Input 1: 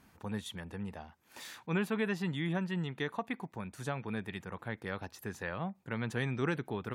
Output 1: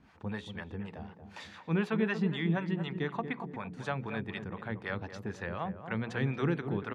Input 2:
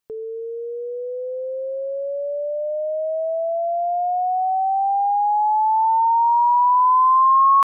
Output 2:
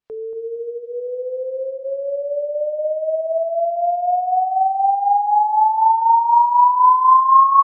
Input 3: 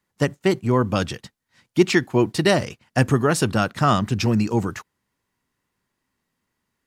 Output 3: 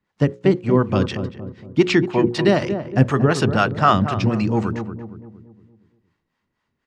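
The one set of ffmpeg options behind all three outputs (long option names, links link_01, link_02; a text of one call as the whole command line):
ffmpeg -i in.wav -filter_complex "[0:a]lowpass=4100,bandreject=frequency=60:width_type=h:width=6,bandreject=frequency=120:width_type=h:width=6,bandreject=frequency=180:width_type=h:width=6,bandreject=frequency=240:width_type=h:width=6,bandreject=frequency=300:width_type=h:width=6,bandreject=frequency=360:width_type=h:width=6,bandreject=frequency=420:width_type=h:width=6,bandreject=frequency=480:width_type=h:width=6,bandreject=frequency=540:width_type=h:width=6,acrossover=split=480[link_01][link_02];[link_01]aeval=exprs='val(0)*(1-0.7/2+0.7/2*cos(2*PI*4*n/s))':channel_layout=same[link_03];[link_02]aeval=exprs='val(0)*(1-0.7/2-0.7/2*cos(2*PI*4*n/s))':channel_layout=same[link_04];[link_03][link_04]amix=inputs=2:normalize=0,asplit=2[link_05][link_06];[link_06]adelay=232,lowpass=frequency=810:poles=1,volume=-7.5dB,asplit=2[link_07][link_08];[link_08]adelay=232,lowpass=frequency=810:poles=1,volume=0.5,asplit=2[link_09][link_10];[link_10]adelay=232,lowpass=frequency=810:poles=1,volume=0.5,asplit=2[link_11][link_12];[link_12]adelay=232,lowpass=frequency=810:poles=1,volume=0.5,asplit=2[link_13][link_14];[link_14]adelay=232,lowpass=frequency=810:poles=1,volume=0.5,asplit=2[link_15][link_16];[link_16]adelay=232,lowpass=frequency=810:poles=1,volume=0.5[link_17];[link_07][link_09][link_11][link_13][link_15][link_17]amix=inputs=6:normalize=0[link_18];[link_05][link_18]amix=inputs=2:normalize=0,volume=5.5dB" out.wav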